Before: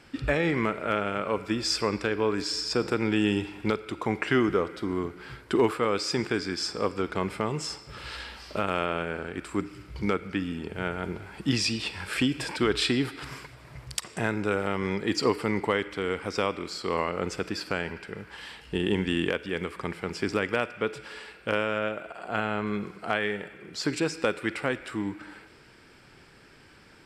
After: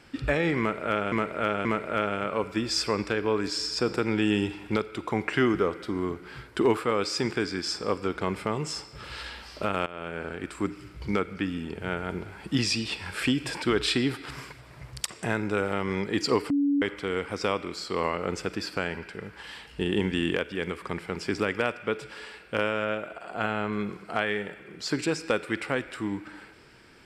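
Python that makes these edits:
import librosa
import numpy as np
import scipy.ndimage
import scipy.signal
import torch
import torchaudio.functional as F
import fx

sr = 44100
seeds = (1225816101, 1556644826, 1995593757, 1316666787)

y = fx.edit(x, sr, fx.repeat(start_s=0.59, length_s=0.53, count=3),
    fx.fade_in_from(start_s=8.8, length_s=0.42, floor_db=-18.5),
    fx.bleep(start_s=15.44, length_s=0.32, hz=284.0, db=-20.5), tone=tone)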